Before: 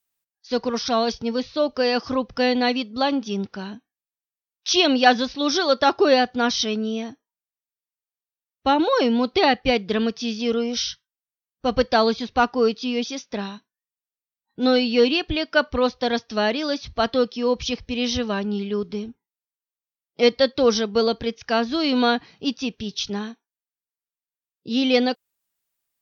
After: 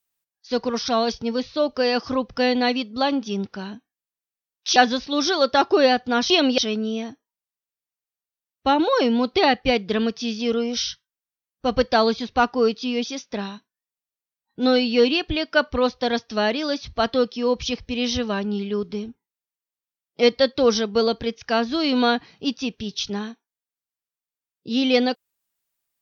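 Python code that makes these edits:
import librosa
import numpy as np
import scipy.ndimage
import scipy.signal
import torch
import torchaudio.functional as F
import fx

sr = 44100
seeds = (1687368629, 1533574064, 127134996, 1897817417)

y = fx.edit(x, sr, fx.move(start_s=4.76, length_s=0.28, to_s=6.58), tone=tone)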